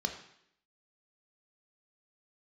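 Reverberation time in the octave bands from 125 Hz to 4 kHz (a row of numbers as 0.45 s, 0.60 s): 0.70 s, 0.75 s, 0.75 s, 0.70 s, 0.75 s, 0.70 s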